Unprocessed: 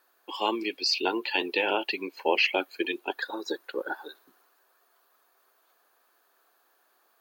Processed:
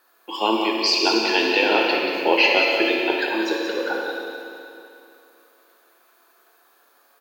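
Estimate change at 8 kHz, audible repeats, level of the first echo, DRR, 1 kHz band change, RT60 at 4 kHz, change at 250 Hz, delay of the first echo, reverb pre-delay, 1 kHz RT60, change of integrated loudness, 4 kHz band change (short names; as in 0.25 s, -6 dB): +9.5 dB, 1, -7.0 dB, -3.0 dB, +8.5 dB, 2.5 s, +10.5 dB, 0.182 s, 9 ms, 2.7 s, +9.0 dB, +8.5 dB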